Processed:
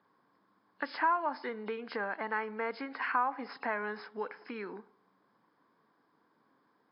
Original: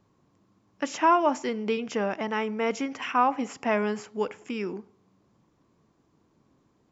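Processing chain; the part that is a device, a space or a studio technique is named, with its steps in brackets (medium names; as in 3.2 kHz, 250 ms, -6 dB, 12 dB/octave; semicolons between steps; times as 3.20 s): hearing aid with frequency lowering (knee-point frequency compression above 2.6 kHz 1.5:1; compression 2.5:1, threshold -32 dBFS, peak gain reduction 11 dB; cabinet simulation 350–5200 Hz, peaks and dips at 360 Hz -6 dB, 610 Hz -5 dB, 990 Hz +3 dB, 1.6 kHz +8 dB, 2.7 kHz -10 dB, 4.2 kHz -5 dB)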